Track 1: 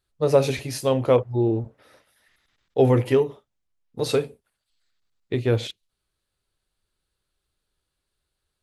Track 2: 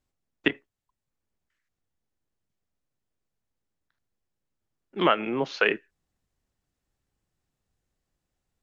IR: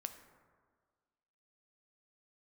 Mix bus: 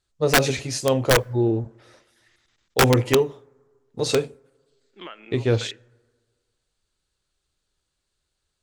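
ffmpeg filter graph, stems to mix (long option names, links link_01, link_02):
-filter_complex "[0:a]lowpass=frequency=7200:width_type=q:width=2.2,aeval=exprs='(mod(3.16*val(0)+1,2)-1)/3.16':channel_layout=same,volume=0dB,asplit=2[link_01][link_02];[link_02]volume=-18dB[link_03];[1:a]lowshelf=frequency=350:gain=-12,acompressor=threshold=-23dB:ratio=6,equalizer=frequency=850:width_type=o:width=1.8:gain=-6,volume=-10dB,asplit=2[link_04][link_05];[link_05]volume=-10dB[link_06];[2:a]atrim=start_sample=2205[link_07];[link_03][link_06]amix=inputs=2:normalize=0[link_08];[link_08][link_07]afir=irnorm=-1:irlink=0[link_09];[link_01][link_04][link_09]amix=inputs=3:normalize=0"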